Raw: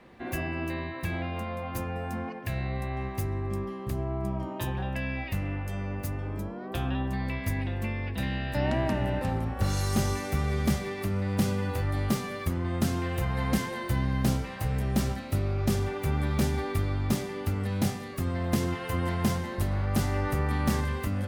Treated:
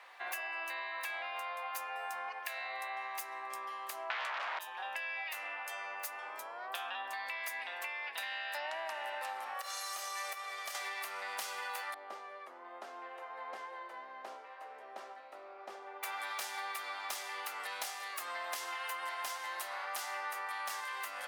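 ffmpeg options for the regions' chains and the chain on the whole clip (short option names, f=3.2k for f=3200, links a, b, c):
-filter_complex "[0:a]asettb=1/sr,asplit=3[a][b][c];[a]atrim=end=4.104[d];[b]atrim=start=4.1:end=4.59,asetpts=PTS-STARTPTS,afade=t=in:d=0.004:c=qsin,afade=t=out:st=0.486:d=0.004:c=qsin,lowpass=5.9k,bandreject=f=190:w=5.1,aeval=exprs='0.0891*sin(PI/2*7.08*val(0)/0.0891)':c=same[e];[c]atrim=start=4.586[f];[d][e]acrossfade=d=0.004:c1=hsin:c2=qsin[g];[g][f]acrossfade=d=0.004:c1=qsin:c2=hsin,asettb=1/sr,asplit=3[h][i][j];[h]atrim=end=9.544[k];[i]atrim=start=9.54:end=10.75,asetpts=PTS-STARTPTS,afade=t=in:d=0.004:c=qsin,afade=t=out:st=1.206:d=0.004:c=qsin,highpass=59,aecho=1:1:1.7:0.45,atrim=end_sample=53361,acompressor=threshold=-30dB:ratio=12:attack=3.2:release=140:knee=1:detection=peak[l];[j]atrim=start=10.746[m];[k][l]acrossfade=d=0.004:c1=hsin:c2=qsin[n];[n][m]acrossfade=d=0.004:c1=qsin:c2=hsin,asettb=1/sr,asplit=3[o][p][q];[o]atrim=end=11.944[r];[p]atrim=start=11.94:end=16.03,asetpts=PTS-STARTPTS,afade=t=in:d=0.004:c=qsin,afade=t=out:st=4.086:d=0.004:c=qsin,bandpass=f=360:t=q:w=1.3,aecho=1:1:406:0.0794,atrim=end_sample=180369[s];[q]atrim=start=16.026[t];[r][s]acrossfade=d=0.004:c1=hsin:c2=qsin[u];[u][t]acrossfade=d=0.004:c1=qsin:c2=hsin,highpass=f=790:w=0.5412,highpass=f=790:w=1.3066,acompressor=threshold=-41dB:ratio=6,volume=4dB"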